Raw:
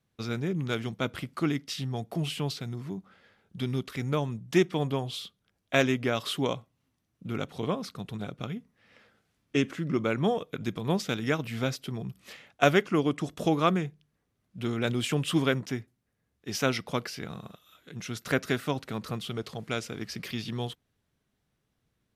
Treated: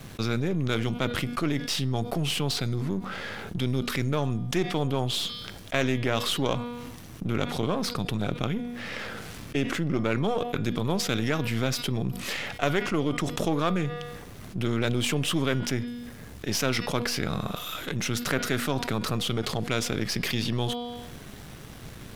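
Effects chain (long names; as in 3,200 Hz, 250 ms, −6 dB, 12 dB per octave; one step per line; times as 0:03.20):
gain on one half-wave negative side −7 dB
hum removal 240.7 Hz, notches 22
envelope flattener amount 70%
level −3.5 dB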